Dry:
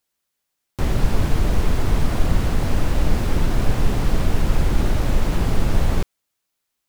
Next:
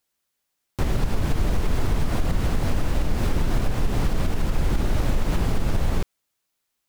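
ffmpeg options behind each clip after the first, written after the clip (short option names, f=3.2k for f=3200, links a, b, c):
-af "alimiter=limit=-12.5dB:level=0:latency=1:release=118"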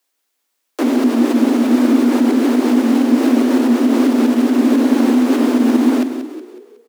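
-filter_complex "[0:a]asplit=6[a][b][c][d][e][f];[b]adelay=184,afreqshift=-52,volume=-10dB[g];[c]adelay=368,afreqshift=-104,volume=-16.7dB[h];[d]adelay=552,afreqshift=-156,volume=-23.5dB[i];[e]adelay=736,afreqshift=-208,volume=-30.2dB[j];[f]adelay=920,afreqshift=-260,volume=-37dB[k];[a][g][h][i][j][k]amix=inputs=6:normalize=0,afreqshift=230,volume=6dB"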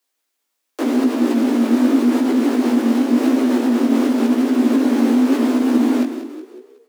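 -af "flanger=delay=15:depth=6.6:speed=0.89"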